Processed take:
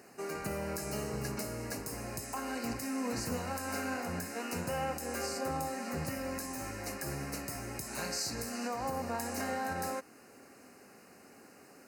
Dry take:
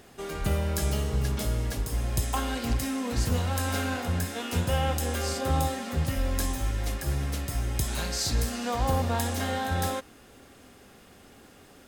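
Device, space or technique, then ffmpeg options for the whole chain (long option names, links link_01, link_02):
PA system with an anti-feedback notch: -af "highpass=180,asuperstop=centerf=3400:order=4:qfactor=2.3,alimiter=limit=-23dB:level=0:latency=1:release=256,volume=-2.5dB"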